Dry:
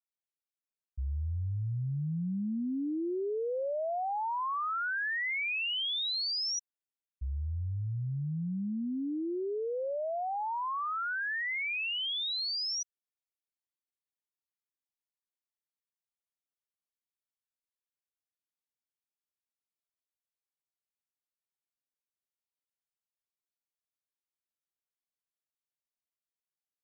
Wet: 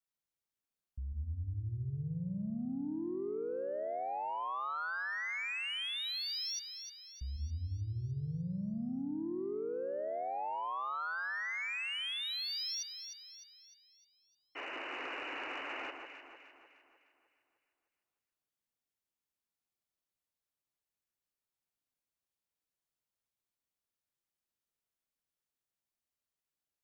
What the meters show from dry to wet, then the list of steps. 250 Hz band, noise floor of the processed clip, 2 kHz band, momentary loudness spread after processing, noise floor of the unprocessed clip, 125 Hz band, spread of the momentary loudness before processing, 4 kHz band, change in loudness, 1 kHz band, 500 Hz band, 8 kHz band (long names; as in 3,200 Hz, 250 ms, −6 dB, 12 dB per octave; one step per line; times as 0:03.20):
−4.5 dB, below −85 dBFS, −4.5 dB, 11 LU, below −85 dBFS, −4.5 dB, 6 LU, −5.0 dB, −5.0 dB, −4.0 dB, −4.0 dB, can't be measured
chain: low-shelf EQ 360 Hz +5.5 dB
brickwall limiter −35 dBFS, peak gain reduction 10.5 dB
sound drawn into the spectrogram noise, 0:14.55–0:15.91, 250–3,000 Hz −42 dBFS
soft clipping −33 dBFS, distortion −26 dB
on a send: delay that swaps between a low-pass and a high-pass 152 ms, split 1,500 Hz, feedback 68%, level −5 dB